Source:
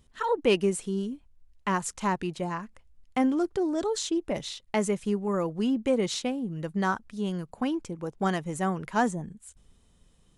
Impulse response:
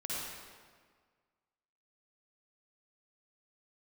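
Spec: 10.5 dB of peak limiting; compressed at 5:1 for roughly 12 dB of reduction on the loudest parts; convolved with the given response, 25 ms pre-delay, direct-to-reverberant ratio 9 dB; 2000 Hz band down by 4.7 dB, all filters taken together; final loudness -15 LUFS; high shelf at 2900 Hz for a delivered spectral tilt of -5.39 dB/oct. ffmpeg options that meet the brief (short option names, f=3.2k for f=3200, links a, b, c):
-filter_complex "[0:a]equalizer=f=2k:t=o:g=-5,highshelf=f=2.9k:g=-3.5,acompressor=threshold=-32dB:ratio=5,alimiter=level_in=5.5dB:limit=-24dB:level=0:latency=1,volume=-5.5dB,asplit=2[a][b];[1:a]atrim=start_sample=2205,adelay=25[c];[b][c]afir=irnorm=-1:irlink=0,volume=-12dB[d];[a][d]amix=inputs=2:normalize=0,volume=23.5dB"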